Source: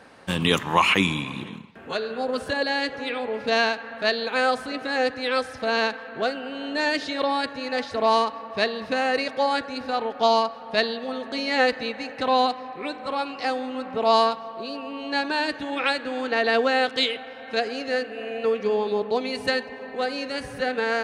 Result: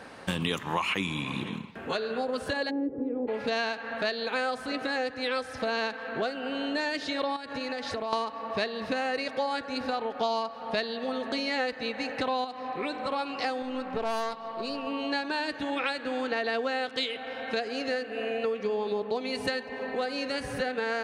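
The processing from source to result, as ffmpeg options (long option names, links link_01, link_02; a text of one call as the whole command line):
ffmpeg -i in.wav -filter_complex "[0:a]asplit=3[link_01][link_02][link_03];[link_01]afade=type=out:start_time=2.69:duration=0.02[link_04];[link_02]lowpass=frequency=350:width_type=q:width=4,afade=type=in:start_time=2.69:duration=0.02,afade=type=out:start_time=3.27:duration=0.02[link_05];[link_03]afade=type=in:start_time=3.27:duration=0.02[link_06];[link_04][link_05][link_06]amix=inputs=3:normalize=0,asettb=1/sr,asplit=3[link_07][link_08][link_09];[link_07]atrim=end=7.364[link_10];[link_08]atrim=start=7.36:end=8.13,asetpts=PTS-STARTPTS,afade=type=in:duration=0.004:curve=qsin,afade=type=out:start_time=0.766:duration=0.004:curve=qsin,acompressor=threshold=-31dB:ratio=12:attack=3.2:release=140:knee=1:detection=peak[link_11];[link_09]atrim=start=8.126[link_12];[link_10][link_11]acrossfade=duration=0.004:curve1=hsin:curve2=qsin[link_13];[link_13][link_12]acrossfade=duration=0.004:curve1=qsin:curve2=hsin,asettb=1/sr,asplit=3[link_14][link_15][link_16];[link_14]atrim=end=12.444[link_17];[link_15]atrim=start=12.44:end=13.12,asetpts=PTS-STARTPTS,afade=type=in:duration=0.004:curve=qsin,afade=type=out:start_time=0.676:duration=0.004:curve=qsin,acompressor=threshold=-27dB:ratio=3:attack=3.2:release=140:knee=1:detection=peak[link_18];[link_16]atrim=start=13.116[link_19];[link_17][link_18]acrossfade=duration=0.004:curve1=hsin:curve2=qsin[link_20];[link_20][link_19]acrossfade=duration=0.004:curve1=qsin:curve2=hsin,asettb=1/sr,asplit=3[link_21][link_22][link_23];[link_21]atrim=end=13.624[link_24];[link_22]atrim=start=13.62:end=14.87,asetpts=PTS-STARTPTS,afade=type=in:duration=0.004:curve=qsin,afade=type=out:start_time=1.246:duration=0.004:curve=qsin,aeval=exprs='(tanh(10*val(0)+0.65)-tanh(0.65))/10':channel_layout=same[link_25];[link_23]atrim=start=14.866[link_26];[link_24][link_25]acrossfade=duration=0.004:curve1=hsin:curve2=qsin[link_27];[link_27][link_26]acrossfade=duration=0.004:curve1=qsin:curve2=hsin,acompressor=threshold=-32dB:ratio=4,volume=3.5dB" out.wav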